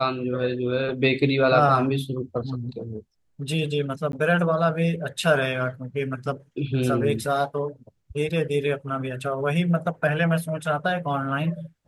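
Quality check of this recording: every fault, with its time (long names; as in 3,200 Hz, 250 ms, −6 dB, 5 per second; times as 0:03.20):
0:04.12–0:04.13: drop-out 12 ms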